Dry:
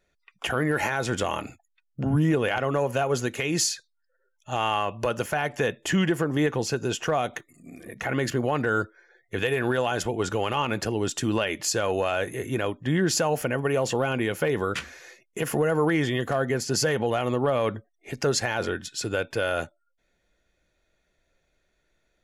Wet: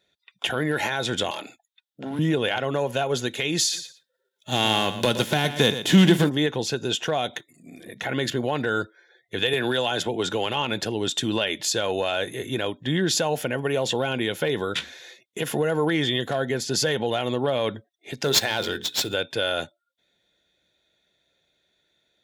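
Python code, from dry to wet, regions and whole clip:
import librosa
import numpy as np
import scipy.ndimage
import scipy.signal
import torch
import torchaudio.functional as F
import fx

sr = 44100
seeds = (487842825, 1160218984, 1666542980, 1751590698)

y = fx.chain(x, sr, fx.highpass(hz=320.0, slope=12),
    fx.clip_hard(threshold_db=-26.5), at=(1.31, 2.19))
y = fx.envelope_flatten(y, sr, power=0.6, at=(3.72, 6.28), fade=0.02)
y = fx.peak_eq(y, sr, hz=220.0, db=9.5, octaves=2.1, at=(3.72, 6.28), fade=0.02)
y = fx.echo_feedback(y, sr, ms=118, feedback_pct=16, wet_db=-11.0, at=(3.72, 6.28), fade=0.02)
y = fx.chain(y, sr, fx.highpass(hz=95.0, slope=12),
    fx.band_squash(depth_pct=70), at=(9.53, 10.46))
y = fx.chain(y, sr, fx.high_shelf(hz=5600.0, db=12.0),
    fx.hum_notches(base_hz=60, count=8),
    fx.running_max(window=3), at=(18.24, 19.14))
y = scipy.signal.sosfilt(scipy.signal.butter(2, 110.0, 'highpass', fs=sr, output='sos'), y)
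y = fx.peak_eq(y, sr, hz=3600.0, db=15.0, octaves=0.33)
y = fx.notch(y, sr, hz=1200.0, q=6.5)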